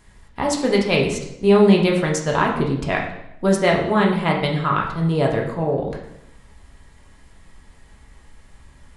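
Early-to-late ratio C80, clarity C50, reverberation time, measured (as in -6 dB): 8.5 dB, 5.5 dB, 0.80 s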